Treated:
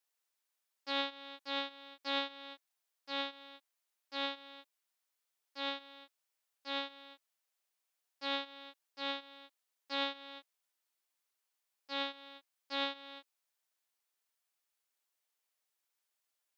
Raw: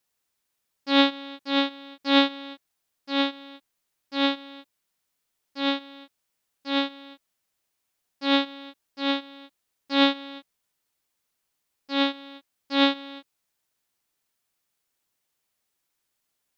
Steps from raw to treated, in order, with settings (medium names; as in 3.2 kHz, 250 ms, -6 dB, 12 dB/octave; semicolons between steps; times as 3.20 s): high-pass 490 Hz 12 dB/octave; compression 2:1, threshold -28 dBFS, peak gain reduction 8 dB; trim -7 dB